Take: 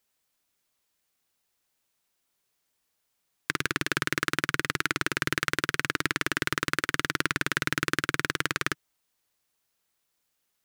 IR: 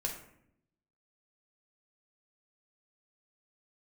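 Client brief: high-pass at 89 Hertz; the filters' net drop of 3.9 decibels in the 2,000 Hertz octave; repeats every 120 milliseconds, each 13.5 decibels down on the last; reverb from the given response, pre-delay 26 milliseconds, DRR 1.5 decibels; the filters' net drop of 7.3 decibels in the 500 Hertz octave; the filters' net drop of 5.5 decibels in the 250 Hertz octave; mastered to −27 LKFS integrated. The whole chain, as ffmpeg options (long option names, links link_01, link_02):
-filter_complex "[0:a]highpass=89,equalizer=frequency=250:width_type=o:gain=-4.5,equalizer=frequency=500:width_type=o:gain=-8,equalizer=frequency=2000:width_type=o:gain=-4.5,aecho=1:1:120|240:0.211|0.0444,asplit=2[link_01][link_02];[1:a]atrim=start_sample=2205,adelay=26[link_03];[link_02][link_03]afir=irnorm=-1:irlink=0,volume=-3.5dB[link_04];[link_01][link_04]amix=inputs=2:normalize=0,volume=2.5dB"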